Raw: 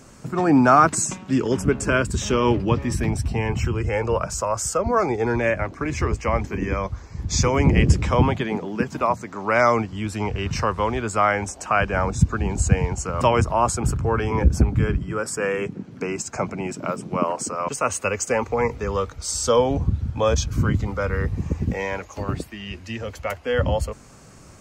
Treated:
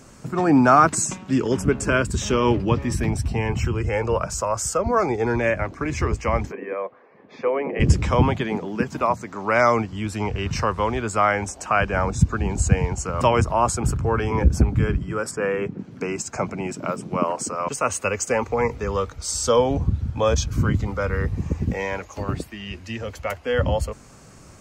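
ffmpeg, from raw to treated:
ffmpeg -i in.wav -filter_complex "[0:a]asplit=3[link_01][link_02][link_03];[link_01]afade=type=out:start_time=6.51:duration=0.02[link_04];[link_02]highpass=frequency=310:width=0.5412,highpass=frequency=310:width=1.3066,equalizer=frequency=320:width_type=q:width=4:gain=-9,equalizer=frequency=500:width_type=q:width=4:gain=4,equalizer=frequency=910:width_type=q:width=4:gain=-6,equalizer=frequency=1400:width_type=q:width=4:gain=-8,equalizer=frequency=2100:width_type=q:width=4:gain=-4,lowpass=frequency=2200:width=0.5412,lowpass=frequency=2200:width=1.3066,afade=type=in:start_time=6.51:duration=0.02,afade=type=out:start_time=7.79:duration=0.02[link_05];[link_03]afade=type=in:start_time=7.79:duration=0.02[link_06];[link_04][link_05][link_06]amix=inputs=3:normalize=0,asettb=1/sr,asplit=3[link_07][link_08][link_09];[link_07]atrim=end=15.314[link_10];[link_08]atrim=start=15.31:end=15.79,asetpts=PTS-STARTPTS,afade=type=in:duration=0.004:curve=qsin,afade=type=out:start_time=0.476:duration=0.004:curve=qsin,aemphasis=mode=reproduction:type=75fm[link_11];[link_09]atrim=start=15.786[link_12];[link_10][link_11]acrossfade=duration=0.004:curve1=hsin:curve2=qsin[link_13];[link_13][link_12]acrossfade=duration=0.004:curve1=qsin:curve2=hsin" out.wav

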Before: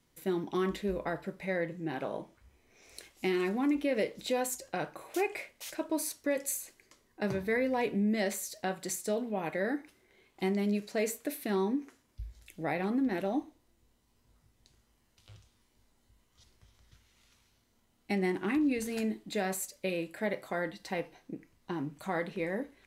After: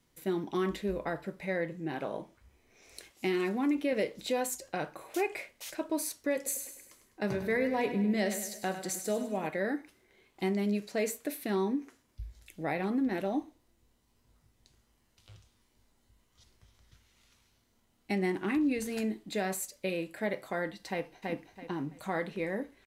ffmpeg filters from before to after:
ffmpeg -i in.wav -filter_complex "[0:a]asettb=1/sr,asplit=3[link_01][link_02][link_03];[link_01]atrim=end=3.114[link_04];[link_02]atrim=start=3.11:end=3.93,asetpts=PTS-STARTPTS,afade=type=in:duration=0.004:curve=qsin,afade=type=out:start_time=0.816:duration=0.004:curve=qsin,highpass=89[link_05];[link_03]atrim=start=3.926[link_06];[link_04][link_05]acrossfade=duration=0.004:curve1=hsin:curve2=qsin[link_07];[link_07][link_06]acrossfade=duration=0.004:curve1=qsin:curve2=hsin,asettb=1/sr,asplit=3[link_08][link_09][link_10];[link_08]atrim=end=6.364[link_11];[link_09]atrim=start=6.36:end=9.47,asetpts=PTS-STARTPTS,afade=type=in:duration=0.004:curve=qsin,afade=type=out:start_time=3.106:duration=0.004:curve=qsin,aecho=1:1:101|202|303|404|505:0.316|0.155|0.0759|0.0372|0.0182,atrim=end_sample=137151[link_12];[link_10]atrim=start=9.466[link_13];[link_11][link_12]acrossfade=duration=0.004:curve1=hsin:curve2=qsin[link_14];[link_14][link_13]acrossfade=duration=0.004:curve1=qsin:curve2=hsin,asplit=2[link_15][link_16];[link_16]afade=type=in:start_time=20.89:duration=0.01,afade=type=out:start_time=21.31:duration=0.01,aecho=0:1:330|660|990|1320:0.794328|0.198582|0.0496455|0.0124114[link_17];[link_15][link_17]amix=inputs=2:normalize=0" out.wav

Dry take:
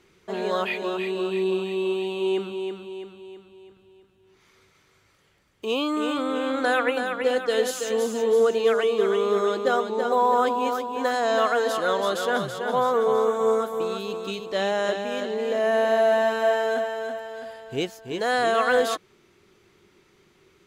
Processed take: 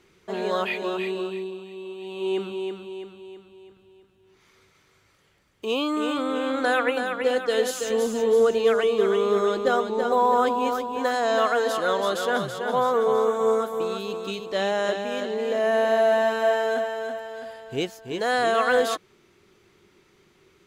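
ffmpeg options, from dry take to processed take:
ffmpeg -i in.wav -filter_complex "[0:a]asettb=1/sr,asplit=3[link_01][link_02][link_03];[link_01]atrim=end=7.814[link_04];[link_02]atrim=start=7.81:end=10.99,asetpts=PTS-STARTPTS,afade=type=in:duration=0.004:curve=qsin,afade=type=out:start_time=3.176:duration=0.004:curve=qsin,lowshelf=frequency=110:gain=10[link_05];[link_03]atrim=start=10.986[link_06];[link_04][link_05]acrossfade=duration=0.004:curve1=hsin:curve2=qsin[link_07];[link_07][link_06]acrossfade=duration=0.004:curve1=qsin:curve2=hsin,asplit=3[link_08][link_09][link_10];[link_08]atrim=end=1.52,asetpts=PTS-STARTPTS,afade=type=out:start_time=1.07:duration=0.45:silence=0.266073[link_11];[link_09]atrim=start=1.52:end=1.97,asetpts=PTS-STARTPTS,volume=-11.5dB[link_12];[link_10]atrim=start=1.97,asetpts=PTS-STARTPTS,afade=type=in:duration=0.45:silence=0.266073[link_13];[link_11][link_12][link_13]concat=n=3:v=0:a=1" out.wav

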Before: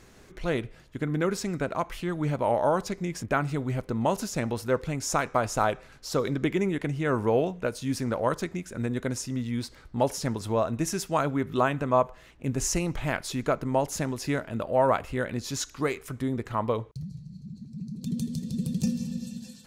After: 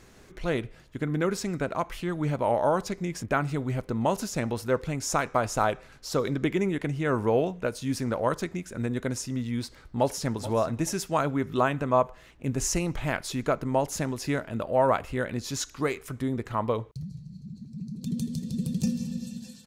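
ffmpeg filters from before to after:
ffmpeg -i in.wav -filter_complex "[0:a]asplit=2[link_01][link_02];[link_02]afade=type=in:start_time=9.61:duration=0.01,afade=type=out:start_time=10.38:duration=0.01,aecho=0:1:430|860|1290:0.188365|0.0470912|0.0117728[link_03];[link_01][link_03]amix=inputs=2:normalize=0" out.wav

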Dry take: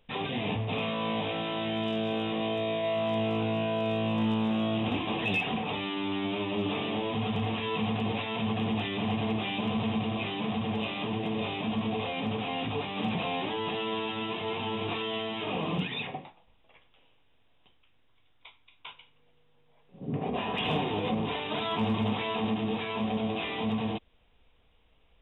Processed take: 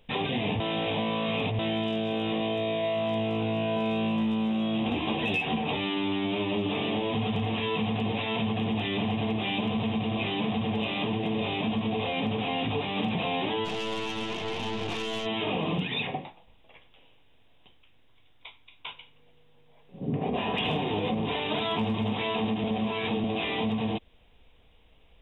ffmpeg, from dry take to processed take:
ffmpeg -i in.wav -filter_complex "[0:a]asettb=1/sr,asplit=3[link_01][link_02][link_03];[link_01]atrim=end=3.754[link_04];[link_02]atrim=start=3.75:end=5.77,asetpts=PTS-STARTPTS,afade=type=in:duration=0.004:curve=qsin,afade=type=out:start_time=2.016:duration=0.004:curve=qsin,asplit=2[link_05][link_06];[link_06]adelay=13,volume=-5dB[link_07];[link_05][link_07]amix=inputs=2:normalize=0,atrim=end_sample=89082[link_08];[link_03]atrim=start=5.766[link_09];[link_04][link_08]acrossfade=duration=0.004:curve1=hsin:curve2=qsin[link_10];[link_10][link_09]acrossfade=duration=0.004:curve1=qsin:curve2=hsin,asplit=3[link_11][link_12][link_13];[link_11]afade=type=out:start_time=13.64:duration=0.02[link_14];[link_12]aeval=exprs='(tanh(39.8*val(0)+0.7)-tanh(0.7))/39.8':channel_layout=same,afade=type=in:start_time=13.64:duration=0.02,afade=type=out:start_time=15.25:duration=0.02[link_15];[link_13]afade=type=in:start_time=15.25:duration=0.02[link_16];[link_14][link_15][link_16]amix=inputs=3:normalize=0,asplit=5[link_17][link_18][link_19][link_20][link_21];[link_17]atrim=end=0.602[link_22];[link_18]atrim=start=0.598:end=1.592,asetpts=PTS-STARTPTS,areverse[link_23];[link_19]atrim=start=1.588:end=22.642[link_24];[link_20]atrim=start=22.638:end=23.242,asetpts=PTS-STARTPTS,areverse[link_25];[link_21]atrim=start=23.238[link_26];[link_22][link_23]acrossfade=duration=0.004:curve1=hsin:curve2=hsin[link_27];[link_27][link_24]acrossfade=duration=0.004:curve1=hsin:curve2=hsin[link_28];[link_28][link_25]acrossfade=duration=0.004:curve1=hsin:curve2=hsin[link_29];[link_29][link_26]acrossfade=duration=0.004:curve1=hsin:curve2=hsin,equalizer=frequency=1300:width_type=o:width=0.75:gain=-4.5,acompressor=threshold=-31dB:ratio=6,volume=6dB" out.wav

